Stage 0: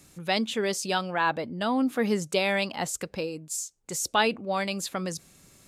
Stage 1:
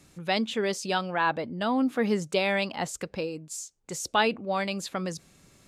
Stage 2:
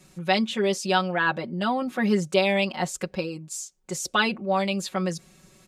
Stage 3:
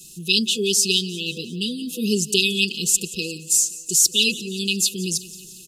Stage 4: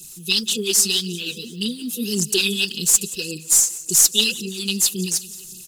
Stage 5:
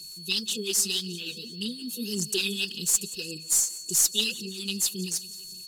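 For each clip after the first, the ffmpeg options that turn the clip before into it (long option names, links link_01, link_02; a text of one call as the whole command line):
ffmpeg -i in.wav -af "highshelf=frequency=8200:gain=-11" out.wav
ffmpeg -i in.wav -af "aecho=1:1:5.4:0.96" out.wav
ffmpeg -i in.wav -af "afftfilt=real='re*(1-between(b*sr/4096,500,2500))':imag='im*(1-between(b*sr/4096,500,2500))':win_size=4096:overlap=0.75,crystalizer=i=6.5:c=0,aecho=1:1:177|354|531|708|885:0.126|0.0743|0.0438|0.0259|0.0153" out.wav
ffmpeg -i in.wav -filter_complex "[0:a]highshelf=frequency=7700:gain=11.5,aphaser=in_gain=1:out_gain=1:delay=4.9:decay=0.56:speed=1.8:type=sinusoidal,asplit=2[link_01][link_02];[link_02]aeval=exprs='clip(val(0),-1,0.2)':channel_layout=same,volume=-11dB[link_03];[link_01][link_03]amix=inputs=2:normalize=0,volume=-6dB" out.wav
ffmpeg -i in.wav -af "aeval=exprs='val(0)+0.0224*sin(2*PI*4400*n/s)':channel_layout=same,volume=-8dB" out.wav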